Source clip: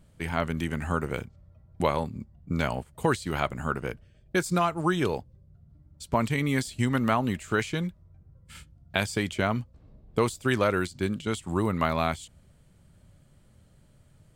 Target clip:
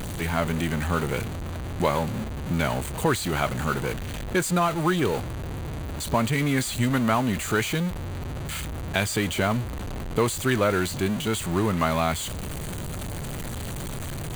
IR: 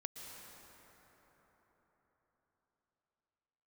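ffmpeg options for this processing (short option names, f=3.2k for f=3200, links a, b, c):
-af "aeval=exprs='val(0)+0.5*0.0473*sgn(val(0))':c=same,bandreject=f=5.3k:w=5.4"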